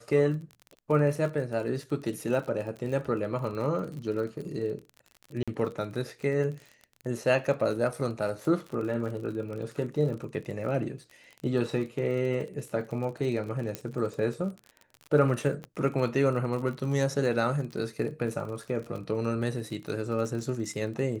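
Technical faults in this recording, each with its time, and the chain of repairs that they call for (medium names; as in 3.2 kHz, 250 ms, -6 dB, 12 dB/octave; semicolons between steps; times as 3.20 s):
crackle 39 per s -36 dBFS
5.43–5.48 s: dropout 46 ms
13.75 s: pop -17 dBFS
15.64 s: pop -25 dBFS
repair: de-click; interpolate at 5.43 s, 46 ms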